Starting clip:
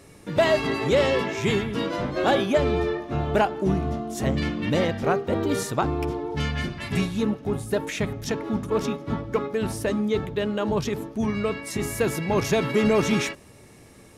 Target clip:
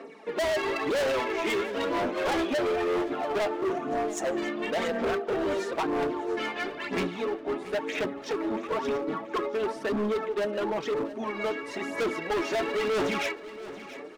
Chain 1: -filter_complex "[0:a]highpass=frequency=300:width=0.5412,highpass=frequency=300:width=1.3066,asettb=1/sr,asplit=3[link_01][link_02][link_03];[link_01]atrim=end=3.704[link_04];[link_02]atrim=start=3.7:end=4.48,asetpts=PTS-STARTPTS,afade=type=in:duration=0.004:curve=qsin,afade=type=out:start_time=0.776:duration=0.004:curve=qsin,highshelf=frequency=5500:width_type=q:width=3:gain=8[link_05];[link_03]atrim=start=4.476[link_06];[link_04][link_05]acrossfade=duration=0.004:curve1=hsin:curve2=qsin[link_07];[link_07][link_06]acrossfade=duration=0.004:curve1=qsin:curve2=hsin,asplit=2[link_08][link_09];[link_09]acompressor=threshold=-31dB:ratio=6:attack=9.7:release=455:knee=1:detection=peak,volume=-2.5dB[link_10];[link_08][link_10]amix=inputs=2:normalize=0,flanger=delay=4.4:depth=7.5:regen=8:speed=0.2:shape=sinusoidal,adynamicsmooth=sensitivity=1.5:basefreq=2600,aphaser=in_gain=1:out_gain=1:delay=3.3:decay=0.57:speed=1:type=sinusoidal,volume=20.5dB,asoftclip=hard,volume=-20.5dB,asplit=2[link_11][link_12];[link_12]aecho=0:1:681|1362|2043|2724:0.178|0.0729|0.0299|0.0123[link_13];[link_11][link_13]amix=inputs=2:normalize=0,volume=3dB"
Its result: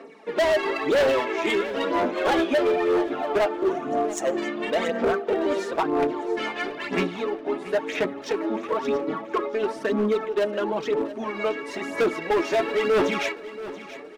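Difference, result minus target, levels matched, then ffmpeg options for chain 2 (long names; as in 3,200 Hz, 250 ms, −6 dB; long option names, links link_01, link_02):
downward compressor: peak gain reduction −9.5 dB; gain into a clipping stage and back: distortion −4 dB
-filter_complex "[0:a]highpass=frequency=300:width=0.5412,highpass=frequency=300:width=1.3066,asettb=1/sr,asplit=3[link_01][link_02][link_03];[link_01]atrim=end=3.704[link_04];[link_02]atrim=start=3.7:end=4.48,asetpts=PTS-STARTPTS,afade=type=in:duration=0.004:curve=qsin,afade=type=out:start_time=0.776:duration=0.004:curve=qsin,highshelf=frequency=5500:width_type=q:width=3:gain=8[link_05];[link_03]atrim=start=4.476[link_06];[link_04][link_05]acrossfade=duration=0.004:curve1=hsin:curve2=qsin[link_07];[link_07][link_06]acrossfade=duration=0.004:curve1=qsin:curve2=hsin,asplit=2[link_08][link_09];[link_09]acompressor=threshold=-42.5dB:ratio=6:attack=9.7:release=455:knee=1:detection=peak,volume=-2.5dB[link_10];[link_08][link_10]amix=inputs=2:normalize=0,flanger=delay=4.4:depth=7.5:regen=8:speed=0.2:shape=sinusoidal,adynamicsmooth=sensitivity=1.5:basefreq=2600,aphaser=in_gain=1:out_gain=1:delay=3.3:decay=0.57:speed=1:type=sinusoidal,volume=28dB,asoftclip=hard,volume=-28dB,asplit=2[link_11][link_12];[link_12]aecho=0:1:681|1362|2043|2724:0.178|0.0729|0.0299|0.0123[link_13];[link_11][link_13]amix=inputs=2:normalize=0,volume=3dB"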